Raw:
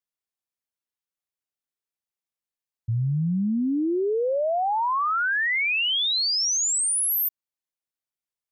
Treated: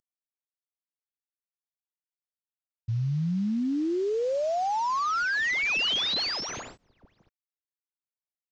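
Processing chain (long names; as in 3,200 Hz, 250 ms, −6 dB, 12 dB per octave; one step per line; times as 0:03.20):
variable-slope delta modulation 32 kbit/s
level −3 dB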